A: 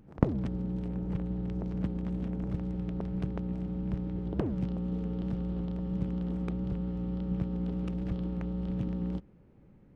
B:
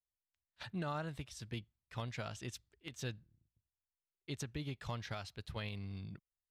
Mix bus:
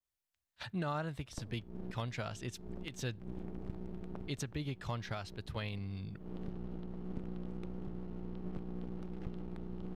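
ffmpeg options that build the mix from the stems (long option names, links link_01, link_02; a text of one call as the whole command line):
ffmpeg -i stem1.wav -i stem2.wav -filter_complex "[0:a]bandreject=frequency=540:width=13,aeval=exprs='max(val(0),0)':channel_layout=same,adelay=1150,volume=-5.5dB[link_01];[1:a]adynamicequalizer=threshold=0.00141:dfrequency=2000:dqfactor=0.7:tfrequency=2000:tqfactor=0.7:attack=5:release=100:ratio=0.375:range=2:mode=cutabove:tftype=highshelf,volume=3dB,asplit=2[link_02][link_03];[link_03]apad=whole_len=489917[link_04];[link_01][link_04]sidechaincompress=threshold=-58dB:ratio=4:attack=8.7:release=121[link_05];[link_05][link_02]amix=inputs=2:normalize=0" out.wav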